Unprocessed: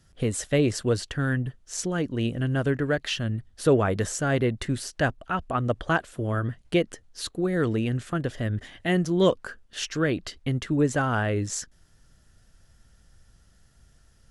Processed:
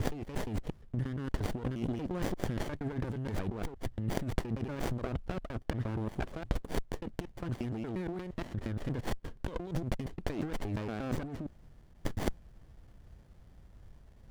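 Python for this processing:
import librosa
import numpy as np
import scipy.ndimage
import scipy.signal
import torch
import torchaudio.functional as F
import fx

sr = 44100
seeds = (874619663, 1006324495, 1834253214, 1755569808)

y = fx.block_reorder(x, sr, ms=117.0, group=7)
y = fx.over_compress(y, sr, threshold_db=-32.0, ratio=-1.0)
y = fx.running_max(y, sr, window=33)
y = F.gain(torch.from_numpy(y), -2.5).numpy()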